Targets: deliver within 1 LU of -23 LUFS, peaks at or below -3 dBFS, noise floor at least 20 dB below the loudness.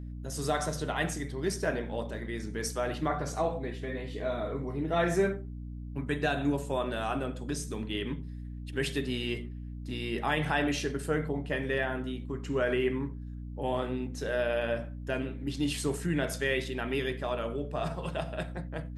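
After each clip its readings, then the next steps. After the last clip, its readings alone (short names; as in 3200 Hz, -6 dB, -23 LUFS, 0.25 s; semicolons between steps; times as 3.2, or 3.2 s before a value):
hum 60 Hz; harmonics up to 300 Hz; hum level -38 dBFS; loudness -32.5 LUFS; peak -15.0 dBFS; loudness target -23.0 LUFS
-> de-hum 60 Hz, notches 5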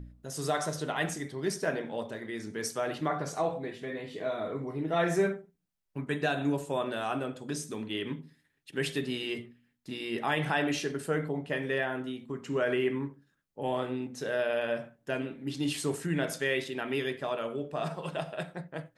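hum none; loudness -33.0 LUFS; peak -15.0 dBFS; loudness target -23.0 LUFS
-> gain +10 dB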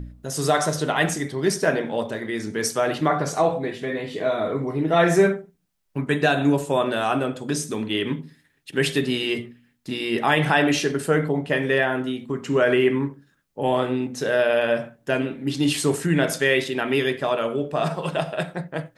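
loudness -23.0 LUFS; peak -5.0 dBFS; noise floor -65 dBFS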